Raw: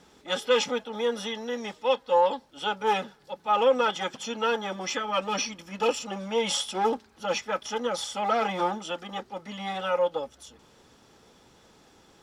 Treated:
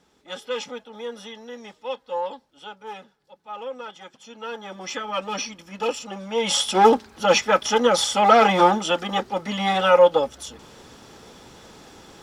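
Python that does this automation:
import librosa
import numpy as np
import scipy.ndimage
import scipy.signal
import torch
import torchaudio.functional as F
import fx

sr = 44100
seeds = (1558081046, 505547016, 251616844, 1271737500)

y = fx.gain(x, sr, db=fx.line((2.33, -6.0), (2.85, -12.0), (4.18, -12.0), (4.97, 0.0), (6.27, 0.0), (6.77, 11.0)))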